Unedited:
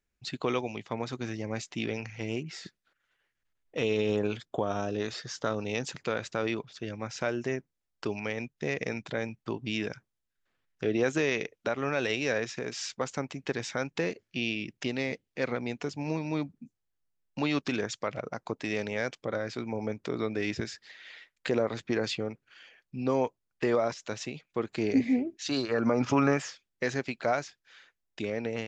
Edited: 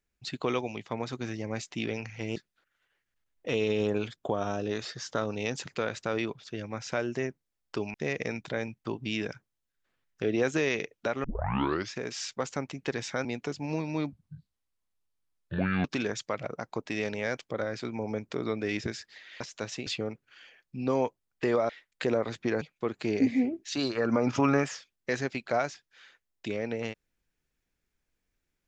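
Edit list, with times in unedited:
2.36–2.65 cut
8.23–8.55 cut
11.85 tape start 0.69 s
13.86–15.62 cut
16.5–17.58 speed 63%
21.14–22.06 swap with 23.89–24.35

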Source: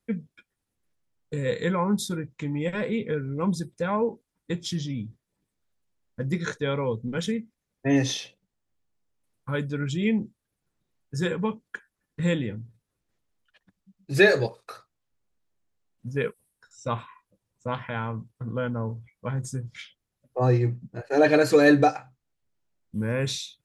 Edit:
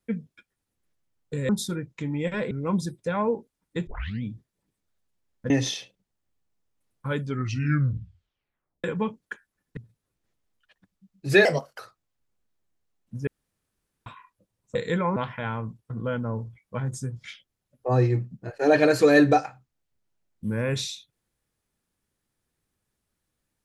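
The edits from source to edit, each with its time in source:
1.49–1.9 move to 17.67
2.92–3.25 cut
4.61 tape start 0.36 s
6.24–7.93 cut
9.64 tape stop 1.63 s
12.2–12.62 cut
14.3–14.71 speed 120%
16.19–16.98 room tone

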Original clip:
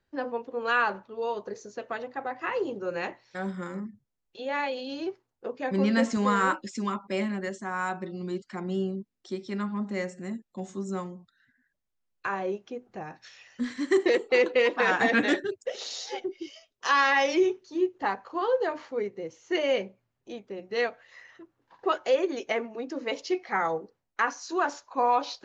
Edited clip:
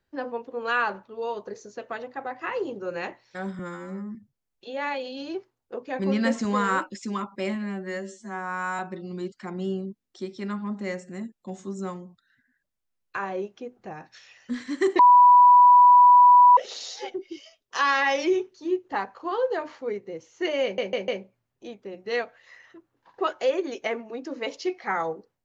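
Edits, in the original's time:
3.59–3.87 stretch 2×
7.27–7.89 stretch 2×
14.09–15.67 bleep 984 Hz -10 dBFS
19.73 stutter 0.15 s, 4 plays

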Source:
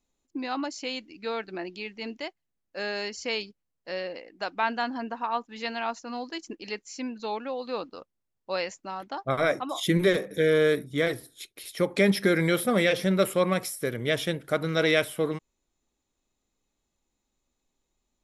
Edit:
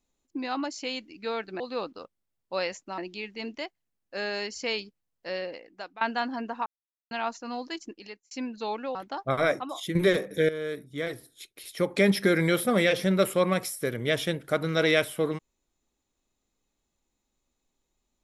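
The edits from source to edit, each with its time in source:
4.1–4.63 fade out, to -19 dB
5.28–5.73 mute
6.37–6.93 fade out
7.57–8.95 move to 1.6
9.49–9.95 fade out, to -10 dB
10.49–12.06 fade in, from -14 dB

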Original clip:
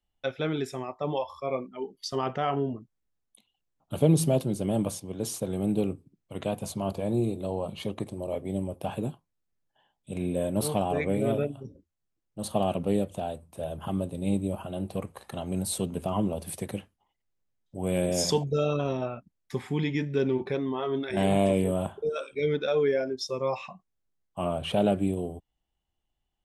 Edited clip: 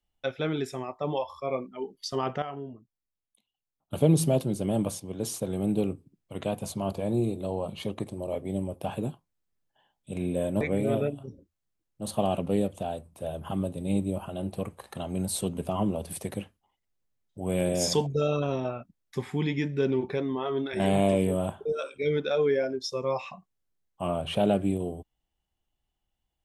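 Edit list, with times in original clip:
2.42–3.93 gain -10 dB
10.61–10.98 cut

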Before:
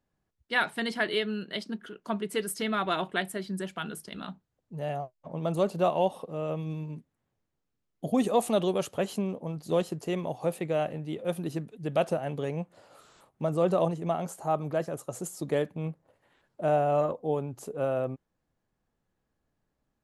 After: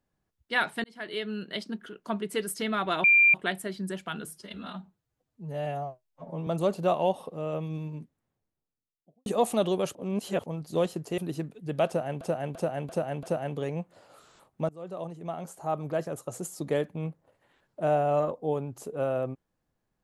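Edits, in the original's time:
0.84–1.43 fade in
3.04 add tone 2380 Hz -15.5 dBFS 0.30 s
3.95–5.43 stretch 1.5×
6.91–8.22 studio fade out
8.91–9.42 reverse
10.14–11.35 cut
12.04–12.38 loop, 5 plays
13.5–14.86 fade in, from -24 dB

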